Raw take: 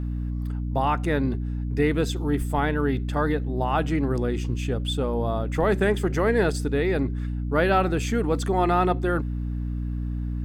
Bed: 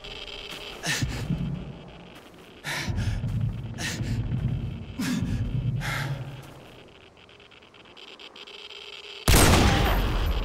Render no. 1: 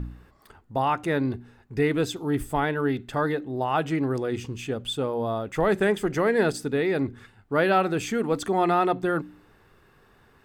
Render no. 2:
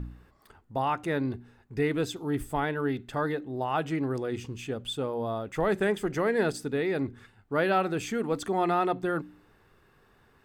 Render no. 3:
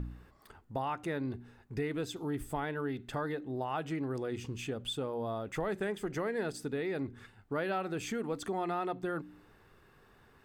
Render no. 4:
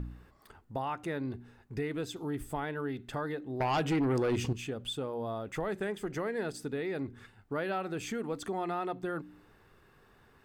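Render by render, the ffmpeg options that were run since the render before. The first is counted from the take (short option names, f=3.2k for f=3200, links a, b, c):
-af "bandreject=f=60:t=h:w=4,bandreject=f=120:t=h:w=4,bandreject=f=180:t=h:w=4,bandreject=f=240:t=h:w=4,bandreject=f=300:t=h:w=4"
-af "volume=-4dB"
-af "acompressor=threshold=-35dB:ratio=2.5"
-filter_complex "[0:a]asettb=1/sr,asplit=3[a][b][c];[a]atrim=end=3.604[d];[b]atrim=start=3.6:end=4.53,asetpts=PTS-STARTPTS,afade=t=in:d=0.004:c=qsin,afade=t=out:st=0.926:d=0.004:c=qsin,aeval=exprs='0.0596*sin(PI/2*2*val(0)/0.0596)':c=same[e];[c]atrim=start=4.526[f];[d][e]acrossfade=d=0.004:c1=hsin:c2=qsin[g];[g][f]acrossfade=d=0.004:c1=qsin:c2=hsin"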